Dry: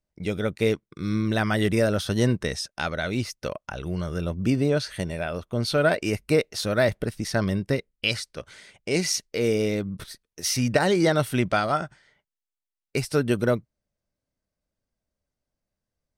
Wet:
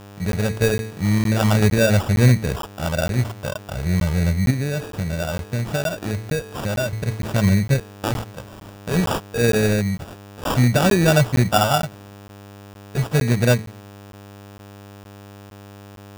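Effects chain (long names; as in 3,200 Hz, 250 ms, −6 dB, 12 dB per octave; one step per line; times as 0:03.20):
high-pass filter 72 Hz 12 dB per octave
parametric band 320 Hz −8.5 dB 0.83 octaves
hum removal 110.6 Hz, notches 4
harmonic and percussive parts rebalanced harmonic +9 dB
low-shelf EQ 91 Hz +10.5 dB
0:04.50–0:06.93: downward compressor 6 to 1, threshold −20 dBFS, peak gain reduction 11.5 dB
hum with harmonics 100 Hz, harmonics 10, −41 dBFS −4 dB per octave
decimation without filtering 21×
regular buffer underruns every 0.46 s, samples 512, zero, from 0:00.32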